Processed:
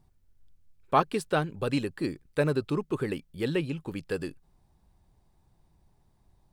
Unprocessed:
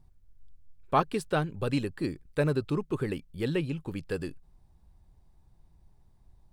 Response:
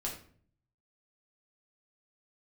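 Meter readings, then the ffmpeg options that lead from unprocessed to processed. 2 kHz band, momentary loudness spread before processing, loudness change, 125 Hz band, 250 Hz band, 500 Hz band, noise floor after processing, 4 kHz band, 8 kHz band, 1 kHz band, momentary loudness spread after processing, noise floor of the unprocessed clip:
+2.0 dB, 8 LU, +1.0 dB, -1.0 dB, +0.5 dB, +1.5 dB, -67 dBFS, +2.0 dB, +2.0 dB, +2.0 dB, 8 LU, -62 dBFS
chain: -af "lowshelf=f=98:g=-10,volume=2dB"

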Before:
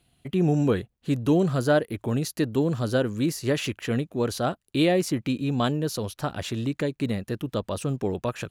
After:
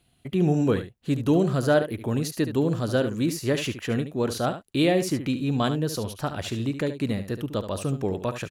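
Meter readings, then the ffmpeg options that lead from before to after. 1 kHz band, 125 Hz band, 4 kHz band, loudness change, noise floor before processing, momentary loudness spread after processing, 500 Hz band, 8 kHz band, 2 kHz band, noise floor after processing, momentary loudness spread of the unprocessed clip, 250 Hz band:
+0.5 dB, +0.5 dB, +0.5 dB, +0.5 dB, -73 dBFS, 8 LU, +0.5 dB, +0.5 dB, +0.5 dB, -64 dBFS, 8 LU, +0.5 dB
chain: -af "aecho=1:1:72:0.299"

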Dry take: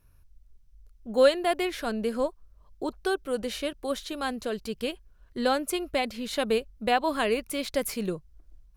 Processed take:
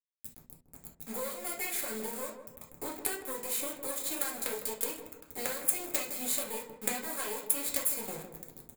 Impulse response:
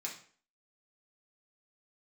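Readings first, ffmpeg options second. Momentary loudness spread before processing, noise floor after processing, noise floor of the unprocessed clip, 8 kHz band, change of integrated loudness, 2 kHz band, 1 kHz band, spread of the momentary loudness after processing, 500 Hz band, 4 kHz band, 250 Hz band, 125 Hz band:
10 LU, -63 dBFS, -59 dBFS, +8.0 dB, -4.5 dB, -7.5 dB, -12.0 dB, 17 LU, -14.0 dB, -8.0 dB, -12.5 dB, -9.5 dB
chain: -filter_complex "[0:a]highshelf=f=7.8k:g=7.5,bandreject=f=60:t=h:w=6,bandreject=f=120:t=h:w=6,bandreject=f=180:t=h:w=6,bandreject=f=240:t=h:w=6,bandreject=f=300:t=h:w=6,bandreject=f=360:t=h:w=6,aecho=1:1:2:0.37,acompressor=threshold=-33dB:ratio=20,acrusher=bits=5:dc=4:mix=0:aa=0.000001,aexciter=amount=4.7:drive=5.5:freq=7.7k,asplit=2[a][b];[b]adelay=158,lowpass=f=890:p=1,volume=-7.5dB,asplit=2[c][d];[d]adelay=158,lowpass=f=890:p=1,volume=0.51,asplit=2[e][f];[f]adelay=158,lowpass=f=890:p=1,volume=0.51,asplit=2[g][h];[h]adelay=158,lowpass=f=890:p=1,volume=0.51,asplit=2[i][j];[j]adelay=158,lowpass=f=890:p=1,volume=0.51,asplit=2[k][l];[l]adelay=158,lowpass=f=890:p=1,volume=0.51[m];[a][c][e][g][i][k][m]amix=inputs=7:normalize=0[n];[1:a]atrim=start_sample=2205,atrim=end_sample=3528[o];[n][o]afir=irnorm=-1:irlink=0,volume=4dB"

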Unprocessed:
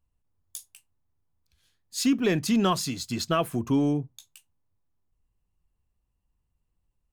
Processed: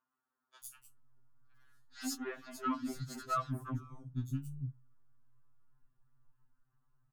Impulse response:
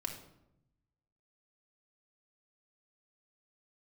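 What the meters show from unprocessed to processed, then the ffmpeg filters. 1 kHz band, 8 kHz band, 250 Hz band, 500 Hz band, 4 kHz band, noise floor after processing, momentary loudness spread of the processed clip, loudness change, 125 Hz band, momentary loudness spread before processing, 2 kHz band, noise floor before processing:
-7.5 dB, -13.0 dB, -15.5 dB, -18.0 dB, -17.5 dB, under -85 dBFS, 15 LU, -14.0 dB, -7.5 dB, 19 LU, -12.5 dB, -77 dBFS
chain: -filter_complex "[0:a]firequalizer=gain_entry='entry(260,0);entry(480,-10);entry(1400,9);entry(2200,-11);entry(4100,-16);entry(15000,-10)':delay=0.05:min_phase=1,acompressor=threshold=-35dB:ratio=20,asoftclip=type=tanh:threshold=-36dB,acrossover=split=290|3900[a][b][c];[c]adelay=100[d];[a]adelay=630[e];[e][b][d]amix=inputs=3:normalize=0,afftfilt=real='re*2.45*eq(mod(b,6),0)':imag='im*2.45*eq(mod(b,6),0)':win_size=2048:overlap=0.75,volume=7.5dB"

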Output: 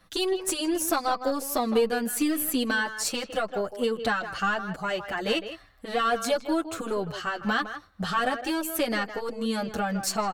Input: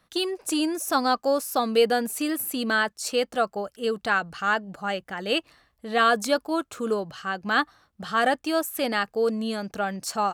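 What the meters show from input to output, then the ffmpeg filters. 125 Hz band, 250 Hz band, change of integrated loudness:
+2.5 dB, -0.5 dB, -2.0 dB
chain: -filter_complex "[0:a]lowshelf=f=70:g=9.5,acompressor=threshold=-29dB:ratio=4,asplit=2[a][b];[b]adelay=160,highpass=300,lowpass=3.4k,asoftclip=type=hard:threshold=-23.5dB,volume=-10dB[c];[a][c]amix=inputs=2:normalize=0,aeval=exprs='0.2*(cos(1*acos(clip(val(0)/0.2,-1,1)))-cos(1*PI/2))+0.0178*(cos(4*acos(clip(val(0)/0.2,-1,1)))-cos(4*PI/2))':c=same,asplit=2[d][e];[e]adelay=7.2,afreqshift=-0.89[f];[d][f]amix=inputs=2:normalize=1,volume=7.5dB"

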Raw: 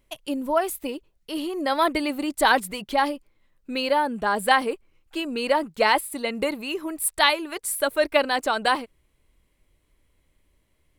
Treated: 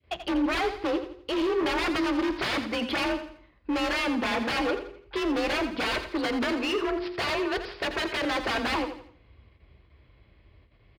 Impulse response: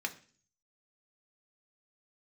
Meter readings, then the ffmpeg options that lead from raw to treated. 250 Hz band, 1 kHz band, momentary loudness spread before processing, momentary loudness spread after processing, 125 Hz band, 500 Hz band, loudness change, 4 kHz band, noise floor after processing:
+1.5 dB, -8.0 dB, 12 LU, 6 LU, n/a, -4.0 dB, -4.0 dB, -3.0 dB, -60 dBFS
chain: -filter_complex "[0:a]asplit=2[a][b];[b]acompressor=threshold=-28dB:ratio=6,volume=1.5dB[c];[a][c]amix=inputs=2:normalize=0,adynamicequalizer=threshold=0.0355:dfrequency=910:dqfactor=1.3:tfrequency=910:tqfactor=1.3:attack=5:release=100:ratio=0.375:range=2:mode=boostabove:tftype=bell,aeval=exprs='0.1*(abs(mod(val(0)/0.1+3,4)-2)-1)':c=same,agate=range=-12dB:threshold=-60dB:ratio=16:detection=peak,afreqshift=37,aresample=11025,aresample=44100,bandreject=f=50.81:t=h:w=4,bandreject=f=101.62:t=h:w=4,bandreject=f=152.43:t=h:w=4,bandreject=f=203.24:t=h:w=4,bandreject=f=254.05:t=h:w=4,bandreject=f=304.86:t=h:w=4,bandreject=f=355.67:t=h:w=4,bandreject=f=406.48:t=h:w=4,bandreject=f=457.29:t=h:w=4,asoftclip=type=hard:threshold=-26.5dB,highshelf=f=3k:g=-7.5,aecho=1:1:84|168|252|336:0.316|0.117|0.0433|0.016,asplit=2[d][e];[1:a]atrim=start_sample=2205[f];[e][f]afir=irnorm=-1:irlink=0,volume=-7dB[g];[d][g]amix=inputs=2:normalize=0"

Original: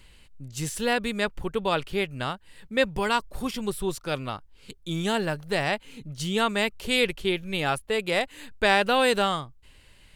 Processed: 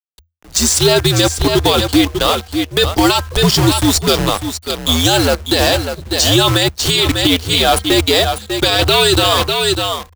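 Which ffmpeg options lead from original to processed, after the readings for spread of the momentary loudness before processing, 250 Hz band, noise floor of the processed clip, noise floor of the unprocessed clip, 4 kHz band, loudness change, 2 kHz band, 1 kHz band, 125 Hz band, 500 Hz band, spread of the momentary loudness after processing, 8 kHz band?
12 LU, +14.5 dB, -44 dBFS, -55 dBFS, +18.5 dB, +13.5 dB, +8.5 dB, +10.5 dB, +18.0 dB, +11.5 dB, 7 LU, +21.5 dB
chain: -filter_complex "[0:a]bandreject=f=278.6:t=h:w=4,bandreject=f=557.2:t=h:w=4,bandreject=f=835.8:t=h:w=4,bandreject=f=1.1144k:t=h:w=4,bandreject=f=1.393k:t=h:w=4,bandreject=f=1.6716k:t=h:w=4,acrossover=split=290|1600|7700[a][b][c][d];[b]aeval=exprs='0.237*(cos(1*acos(clip(val(0)/0.237,-1,1)))-cos(1*PI/2))+0.075*(cos(5*acos(clip(val(0)/0.237,-1,1)))-cos(5*PI/2))+0.00335*(cos(7*acos(clip(val(0)/0.237,-1,1)))-cos(7*PI/2))+0.0188*(cos(8*acos(clip(val(0)/0.237,-1,1)))-cos(8*PI/2))':c=same[e];[c]aexciter=amount=9.5:drive=2.3:freq=3.4k[f];[a][e][f][d]amix=inputs=4:normalize=0,afftdn=nr=21:nf=-34,flanger=delay=1.2:depth=3.4:regen=57:speed=0.39:shape=sinusoidal,acrusher=bits=6:dc=4:mix=0:aa=0.000001,afreqshift=-84,aecho=1:1:596:0.316,alimiter=level_in=16.5dB:limit=-1dB:release=50:level=0:latency=1,volume=-1dB"

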